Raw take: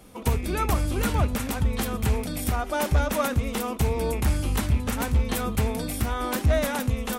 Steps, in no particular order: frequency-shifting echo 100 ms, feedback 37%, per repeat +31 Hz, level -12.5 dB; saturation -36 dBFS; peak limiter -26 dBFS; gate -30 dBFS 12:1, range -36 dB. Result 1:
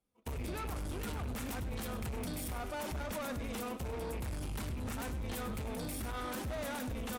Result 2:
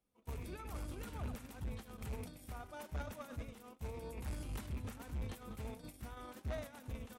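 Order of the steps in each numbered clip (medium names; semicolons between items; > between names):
gate > peak limiter > saturation > frequency-shifting echo; frequency-shifting echo > peak limiter > gate > saturation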